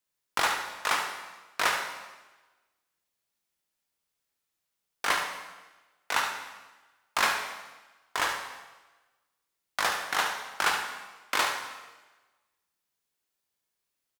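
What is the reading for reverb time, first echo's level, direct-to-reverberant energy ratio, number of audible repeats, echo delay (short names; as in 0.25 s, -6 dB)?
1.2 s, -8.5 dB, 2.0 dB, 1, 73 ms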